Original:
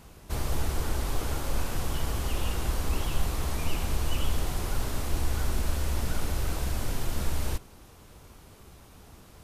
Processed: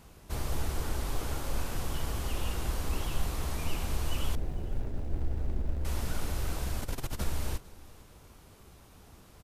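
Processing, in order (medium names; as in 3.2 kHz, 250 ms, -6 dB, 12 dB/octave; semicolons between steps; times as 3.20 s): 4.35–5.85 s: median filter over 41 samples; 6.81–7.24 s: compressor with a negative ratio -29 dBFS, ratio -0.5; delay 451 ms -22 dB; trim -3.5 dB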